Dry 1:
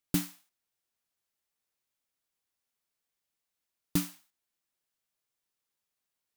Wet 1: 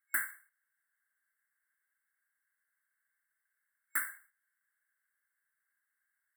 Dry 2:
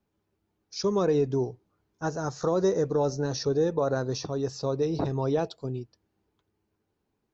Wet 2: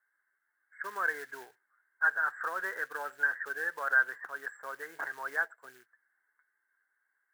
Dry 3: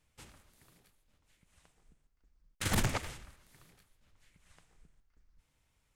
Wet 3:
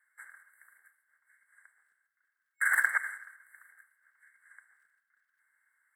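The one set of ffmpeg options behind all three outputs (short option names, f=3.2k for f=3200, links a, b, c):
-af "afftfilt=real='re*(1-between(b*sr/4096,2200,7500))':imag='im*(1-between(b*sr/4096,2200,7500))':win_size=4096:overlap=0.75,acrusher=bits=8:mode=log:mix=0:aa=0.000001,highpass=f=1.6k:t=q:w=11"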